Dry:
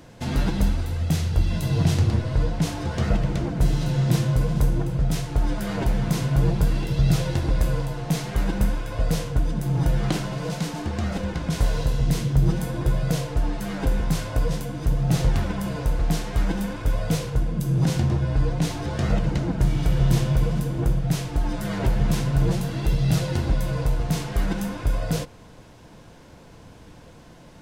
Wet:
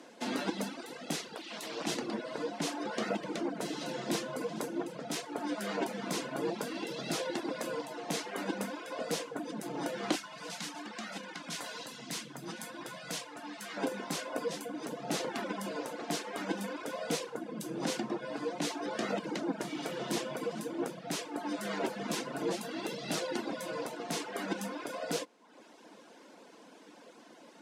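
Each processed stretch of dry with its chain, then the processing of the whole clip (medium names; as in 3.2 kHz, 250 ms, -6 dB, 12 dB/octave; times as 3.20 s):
1.35–1.87 s: high-pass 140 Hz + bass shelf 400 Hz -10.5 dB + loudspeaker Doppler distortion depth 0.59 ms
10.15–13.77 s: peaking EQ 430 Hz -12.5 dB 1.6 oct + hum notches 50/100/150/200/250 Hz
whole clip: low-pass 11 kHz 12 dB/octave; reverb removal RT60 0.77 s; steep high-pass 230 Hz 36 dB/octave; trim -2.5 dB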